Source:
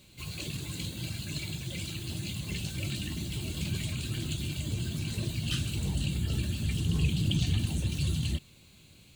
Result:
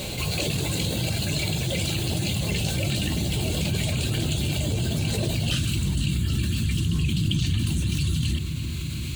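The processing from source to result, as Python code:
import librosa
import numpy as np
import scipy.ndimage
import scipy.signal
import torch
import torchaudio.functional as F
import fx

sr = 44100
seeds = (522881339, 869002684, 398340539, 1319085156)

y = fx.band_shelf(x, sr, hz=600.0, db=fx.steps((0.0, 8.5), (5.55, -10.0)), octaves=1.2)
y = fx.echo_filtered(y, sr, ms=342, feedback_pct=62, hz=2000.0, wet_db=-19.0)
y = fx.env_flatten(y, sr, amount_pct=70)
y = y * 10.0 ** (1.5 / 20.0)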